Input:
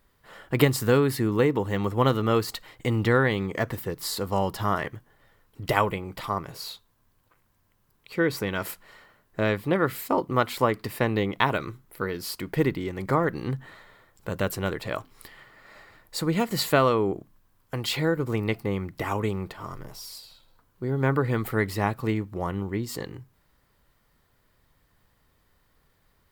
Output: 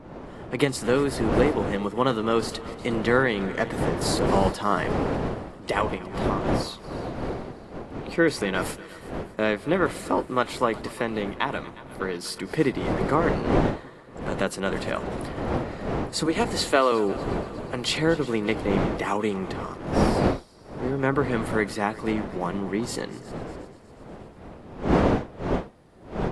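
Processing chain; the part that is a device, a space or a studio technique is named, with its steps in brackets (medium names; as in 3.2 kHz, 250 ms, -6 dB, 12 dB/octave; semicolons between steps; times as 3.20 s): high-pass 160 Hz 24 dB/octave; 16.26–16.92 s: high-pass 260 Hz 24 dB/octave; multi-head delay 120 ms, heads second and third, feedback 53%, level -20 dB; smartphone video outdoors (wind noise 520 Hz -31 dBFS; level rider gain up to 9.5 dB; trim -5.5 dB; AAC 48 kbps 24 kHz)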